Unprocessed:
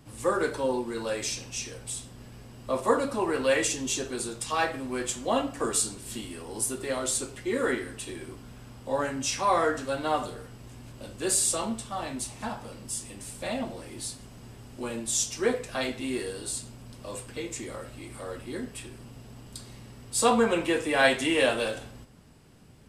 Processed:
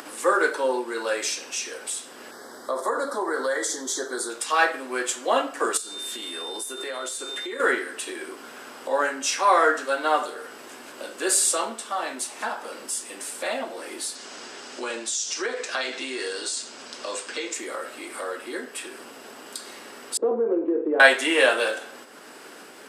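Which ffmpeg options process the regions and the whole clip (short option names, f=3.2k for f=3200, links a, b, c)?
-filter_complex "[0:a]asettb=1/sr,asplit=3[a][b][c];[a]atrim=end=2.314[d];[b]atrim=start=2.31:end=4.3,asetpts=PTS-STARTPTS,afade=t=in:d=0.004:c=qsin,afade=t=out:st=1.986:d=0.004:c=qsin,acompressor=threshold=-26dB:ratio=5:attack=3.2:release=140:knee=1:detection=peak,asuperstop=centerf=2600:order=4:qfactor=1.6[e];[c]atrim=start=4.296[f];[d][e]acrossfade=d=0.004:c1=hsin:c2=qsin[g];[g][f]acrossfade=d=0.004:c1=qsin:c2=hsin,asettb=1/sr,asplit=3[h][i][j];[h]atrim=end=5.774[k];[i]atrim=start=5.77:end=7.6,asetpts=PTS-STARTPTS,afade=t=in:d=0.004:c=qsin,afade=t=out:st=1.826:d=0.004:c=qsin,highpass=140,aeval=exprs='val(0)+0.0112*sin(2*PI*3600*n/s)':c=same,acompressor=threshold=-36dB:ratio=5:attack=3.2:release=140:knee=1:detection=peak[l];[j]atrim=start=7.596[m];[k][l]acrossfade=d=0.004:c1=hsin:c2=qsin[n];[n][m]acrossfade=d=0.004:c1=qsin:c2=hsin,asettb=1/sr,asplit=3[o][p][q];[o]atrim=end=14.154[r];[p]atrim=start=14.15:end=17.54,asetpts=PTS-STARTPTS,afade=t=in:d=0.004:c=qsin,afade=t=out:st=3.386:d=0.004:c=qsin,lowpass=f=6.4k:w=0.5412,lowpass=f=6.4k:w=1.3066,aemphasis=mode=production:type=75kf,acompressor=threshold=-29dB:ratio=5:attack=3.2:release=140:knee=1:detection=peak[s];[q]atrim=start=17.536[t];[r][s]acrossfade=d=0.004:c1=hsin:c2=qsin[u];[u][t]acrossfade=d=0.004:c1=qsin:c2=hsin,asettb=1/sr,asplit=3[v][w][x];[v]atrim=end=20.174[y];[w]atrim=start=20.17:end=21,asetpts=PTS-STARTPTS,afade=t=in:d=0.004:c=qsin,afade=t=out:st=0.826:d=0.004:c=qsin,lowpass=f=380:t=q:w=2.8,acompressor=threshold=-21dB:ratio=6:attack=3.2:release=140:knee=1:detection=peak[z];[x]atrim=start=20.996[aa];[y][z]acrossfade=d=0.004:c1=hsin:c2=qsin[ab];[ab][aa]acrossfade=d=0.004:c1=qsin:c2=hsin,acompressor=mode=upward:threshold=-31dB:ratio=2.5,highpass=f=330:w=0.5412,highpass=f=330:w=1.3066,equalizer=f=1.5k:w=2.1:g=7,volume=4dB"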